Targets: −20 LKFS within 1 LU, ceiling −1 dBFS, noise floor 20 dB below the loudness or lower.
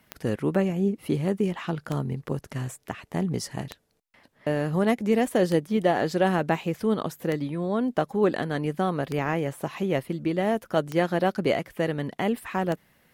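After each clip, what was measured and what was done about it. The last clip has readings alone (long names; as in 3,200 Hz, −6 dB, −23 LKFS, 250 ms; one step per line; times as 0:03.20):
number of clicks 8; integrated loudness −27.0 LKFS; sample peak −8.5 dBFS; target loudness −20.0 LKFS
→ click removal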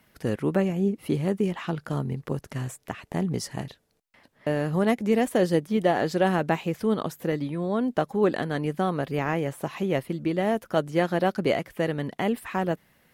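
number of clicks 0; integrated loudness −27.0 LKFS; sample peak −8.5 dBFS; target loudness −20.0 LKFS
→ level +7 dB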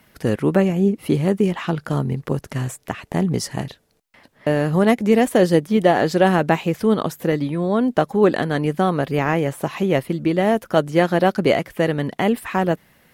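integrated loudness −20.0 LKFS; sample peak −1.5 dBFS; background noise floor −61 dBFS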